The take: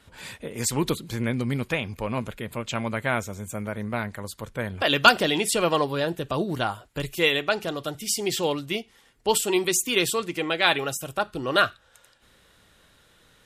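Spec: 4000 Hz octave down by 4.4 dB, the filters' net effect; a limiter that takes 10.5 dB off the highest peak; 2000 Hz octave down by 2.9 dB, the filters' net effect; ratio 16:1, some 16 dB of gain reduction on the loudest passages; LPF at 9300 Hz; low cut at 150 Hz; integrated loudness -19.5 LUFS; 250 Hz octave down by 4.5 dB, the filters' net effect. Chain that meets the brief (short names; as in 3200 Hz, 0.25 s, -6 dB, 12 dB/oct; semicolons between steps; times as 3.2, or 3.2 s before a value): HPF 150 Hz; LPF 9300 Hz; bell 250 Hz -5.5 dB; bell 2000 Hz -3 dB; bell 4000 Hz -4.5 dB; compressor 16:1, threshold -28 dBFS; gain +17 dB; limiter -6.5 dBFS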